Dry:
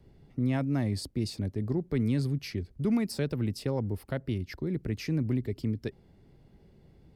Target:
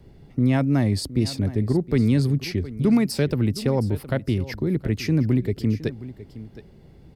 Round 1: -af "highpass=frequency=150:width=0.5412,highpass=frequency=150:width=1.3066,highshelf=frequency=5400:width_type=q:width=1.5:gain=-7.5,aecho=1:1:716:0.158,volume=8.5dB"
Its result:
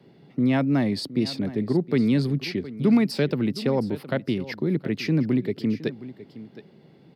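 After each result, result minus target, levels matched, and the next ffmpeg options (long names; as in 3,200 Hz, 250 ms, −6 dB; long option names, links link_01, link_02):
8,000 Hz band −6.5 dB; 125 Hz band −4.5 dB
-af "highpass=frequency=150:width=0.5412,highpass=frequency=150:width=1.3066,aecho=1:1:716:0.158,volume=8.5dB"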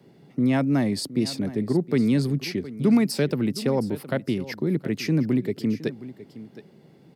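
125 Hz band −4.5 dB
-af "aecho=1:1:716:0.158,volume=8.5dB"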